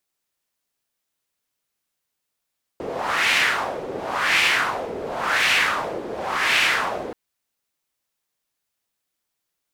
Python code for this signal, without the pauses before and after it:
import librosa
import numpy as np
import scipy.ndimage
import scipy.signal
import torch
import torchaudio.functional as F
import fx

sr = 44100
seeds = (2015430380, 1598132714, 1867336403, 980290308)

y = fx.wind(sr, seeds[0], length_s=4.33, low_hz=440.0, high_hz=2400.0, q=2.4, gusts=4, swing_db=13.0)